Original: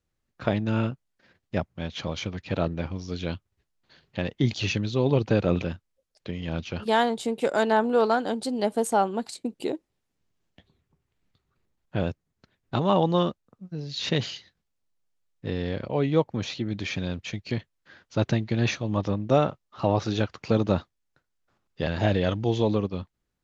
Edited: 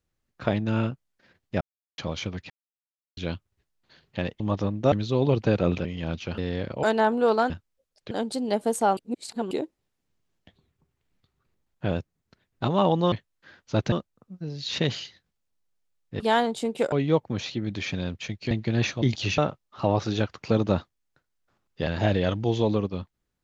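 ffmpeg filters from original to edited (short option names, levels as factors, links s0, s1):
-filter_complex "[0:a]asplit=21[s0][s1][s2][s3][s4][s5][s6][s7][s8][s9][s10][s11][s12][s13][s14][s15][s16][s17][s18][s19][s20];[s0]atrim=end=1.61,asetpts=PTS-STARTPTS,afade=t=out:st=1.606:d=0.004:c=hsin[s21];[s1]atrim=start=1.61:end=1.98,asetpts=PTS-STARTPTS,volume=0[s22];[s2]atrim=start=1.98:end=2.5,asetpts=PTS-STARTPTS,afade=t=in:d=0.004:c=hsin,afade=t=out:st=0.516:d=0.004:c=hsin[s23];[s3]atrim=start=2.5:end=3.17,asetpts=PTS-STARTPTS,volume=0[s24];[s4]atrim=start=3.17:end=4.402,asetpts=PTS-STARTPTS,afade=t=in:d=0.004:c=hsin[s25];[s5]atrim=start=18.858:end=19.382[s26];[s6]atrim=start=4.758:end=5.692[s27];[s7]atrim=start=6.298:end=6.832[s28];[s8]atrim=start=15.508:end=15.962[s29];[s9]atrim=start=7.548:end=8.222[s30];[s10]atrim=start=5.688:end=6.302[s31];[s11]atrim=start=8.218:end=9.082[s32];[s12]atrim=start=9.078:end=9.622,asetpts=PTS-STARTPTS,areverse[s33];[s13]atrim=start=9.618:end=13.232[s34];[s14]atrim=start=17.548:end=18.352[s35];[s15]atrim=start=13.228:end=15.512[s36];[s16]atrim=start=6.828:end=7.552[s37];[s17]atrim=start=15.958:end=17.552[s38];[s18]atrim=start=18.348:end=18.862[s39];[s19]atrim=start=4.398:end=4.762[s40];[s20]atrim=start=19.378[s41];[s21][s22][s23][s24][s25]concat=n=5:v=0:a=1[s42];[s42][s26]acrossfade=d=0.004:c1=hsin:c2=hsin[s43];[s43][s27]acrossfade=d=0.004:c1=hsin:c2=hsin[s44];[s44][s28]acrossfade=d=0.004:c1=hsin:c2=hsin[s45];[s45][s29]acrossfade=d=0.004:c1=hsin:c2=hsin[s46];[s46][s30]acrossfade=d=0.004:c1=hsin:c2=hsin[s47];[s47][s31]acrossfade=d=0.004:c1=hsin:c2=hsin[s48];[s48][s32]acrossfade=d=0.004:c1=hsin:c2=hsin[s49];[s49][s33]acrossfade=d=0.004:c1=hsin:c2=hsin[s50];[s50][s34]acrossfade=d=0.004:c1=hsin:c2=hsin[s51];[s51][s35]acrossfade=d=0.004:c1=hsin:c2=hsin[s52];[s52][s36]acrossfade=d=0.004:c1=hsin:c2=hsin[s53];[s53][s37]acrossfade=d=0.004:c1=hsin:c2=hsin[s54];[s54][s38]acrossfade=d=0.004:c1=hsin:c2=hsin[s55];[s55][s39]acrossfade=d=0.004:c1=hsin:c2=hsin[s56];[s56][s40]acrossfade=d=0.004:c1=hsin:c2=hsin[s57];[s57][s41]acrossfade=d=0.004:c1=hsin:c2=hsin"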